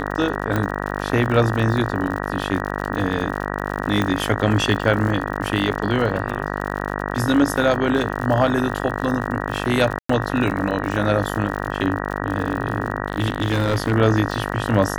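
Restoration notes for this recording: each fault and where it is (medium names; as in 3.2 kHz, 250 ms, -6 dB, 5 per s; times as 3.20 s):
buzz 50 Hz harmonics 38 -26 dBFS
crackle 68 per s -27 dBFS
0.56 s: pop -9 dBFS
4.02 s: pop -9 dBFS
9.99–10.09 s: dropout 104 ms
13.06–13.93 s: clipped -14 dBFS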